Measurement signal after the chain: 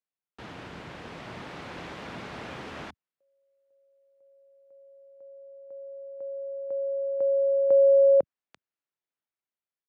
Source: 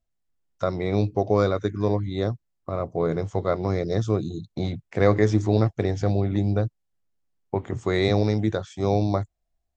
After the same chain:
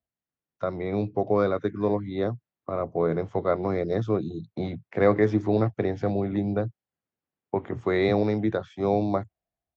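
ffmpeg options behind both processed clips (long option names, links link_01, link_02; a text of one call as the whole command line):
ffmpeg -i in.wav -filter_complex "[0:a]acrossover=split=190[link_01][link_02];[link_01]asplit=2[link_03][link_04];[link_04]adelay=25,volume=-9dB[link_05];[link_03][link_05]amix=inputs=2:normalize=0[link_06];[link_02]dynaudnorm=framelen=920:gausssize=3:maxgain=4dB[link_07];[link_06][link_07]amix=inputs=2:normalize=0,highpass=100,lowpass=2700,volume=-3.5dB" out.wav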